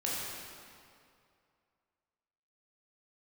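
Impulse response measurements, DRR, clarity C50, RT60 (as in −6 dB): −6.5 dB, −2.5 dB, 2.4 s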